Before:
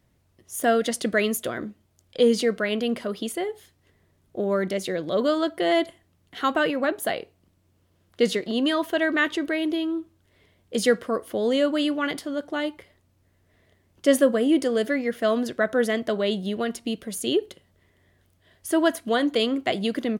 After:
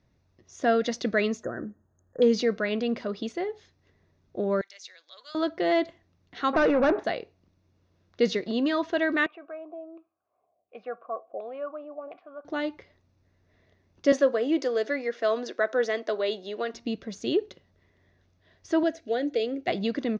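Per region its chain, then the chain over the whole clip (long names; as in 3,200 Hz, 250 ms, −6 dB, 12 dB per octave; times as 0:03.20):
0:01.43–0:02.22: dynamic equaliser 980 Hz, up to −7 dB, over −47 dBFS, Q 1.8 + linear-phase brick-wall band-stop 1,900–6,300 Hz
0:04.61–0:05.35: high-pass filter 930 Hz + first difference
0:06.53–0:07.04: mu-law and A-law mismatch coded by mu + low-pass filter 1,700 Hz + mid-hump overdrive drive 23 dB, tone 1,300 Hz, clips at −11.5 dBFS
0:09.26–0:12.45: auto-filter low-pass saw down 1.4 Hz 520–2,500 Hz + formant filter a
0:14.12–0:16.74: high-pass filter 320 Hz 24 dB per octave + high-shelf EQ 11,000 Hz +10 dB
0:18.83–0:19.68: high-pass filter 49 Hz + dynamic equaliser 4,100 Hz, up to −6 dB, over −42 dBFS, Q 0.98 + phaser with its sweep stopped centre 450 Hz, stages 4
whole clip: Chebyshev low-pass filter 6,200 Hz, order 5; notch filter 3,100 Hz, Q 8.1; level −2 dB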